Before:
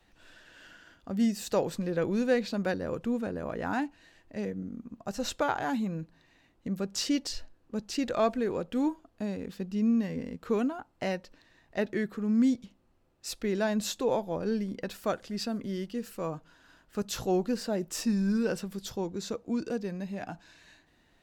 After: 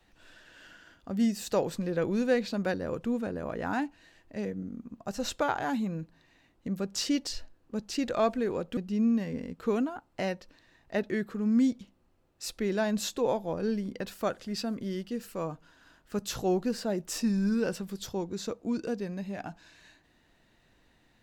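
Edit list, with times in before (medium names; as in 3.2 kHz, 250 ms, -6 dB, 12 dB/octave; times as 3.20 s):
8.77–9.60 s: delete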